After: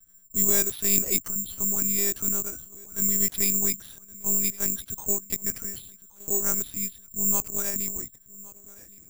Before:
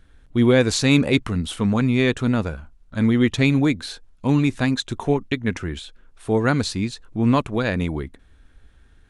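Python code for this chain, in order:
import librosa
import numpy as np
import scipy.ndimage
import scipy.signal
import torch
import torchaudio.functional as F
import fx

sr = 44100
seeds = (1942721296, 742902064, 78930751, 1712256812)

y = fx.echo_feedback(x, sr, ms=1117, feedback_pct=44, wet_db=-21)
y = fx.lpc_monotone(y, sr, seeds[0], pitch_hz=200.0, order=8)
y = (np.kron(y[::6], np.eye(6)[0]) * 6)[:len(y)]
y = y * 10.0 ** (-14.0 / 20.0)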